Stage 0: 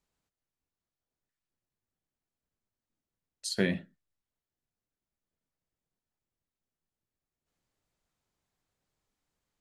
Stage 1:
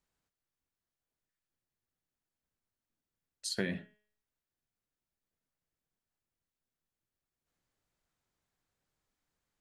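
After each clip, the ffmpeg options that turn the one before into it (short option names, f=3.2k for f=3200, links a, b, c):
-af "equalizer=f=1.6k:w=1.9:g=3,bandreject=f=210.7:t=h:w=4,bandreject=f=421.4:t=h:w=4,bandreject=f=632.1:t=h:w=4,bandreject=f=842.8:t=h:w=4,bandreject=f=1.0535k:t=h:w=4,bandreject=f=1.2642k:t=h:w=4,bandreject=f=1.4749k:t=h:w=4,bandreject=f=1.6856k:t=h:w=4,bandreject=f=1.8963k:t=h:w=4,bandreject=f=2.107k:t=h:w=4,bandreject=f=2.3177k:t=h:w=4,bandreject=f=2.5284k:t=h:w=4,bandreject=f=2.7391k:t=h:w=4,bandreject=f=2.9498k:t=h:w=4,bandreject=f=3.1605k:t=h:w=4,bandreject=f=3.3712k:t=h:w=4,acompressor=threshold=-27dB:ratio=6,volume=-2dB"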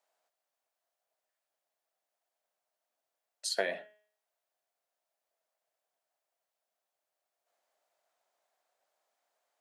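-af "highpass=f=650:t=q:w=4.9,volume=2.5dB"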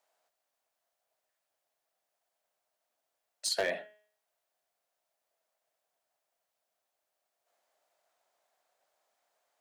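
-af "volume=27dB,asoftclip=hard,volume=-27dB,volume=3dB"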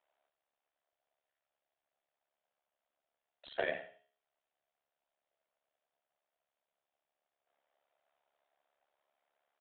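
-af "tremolo=f=71:d=0.857,aecho=1:1:81|162|243:0.224|0.0604|0.0163,aresample=8000,aresample=44100"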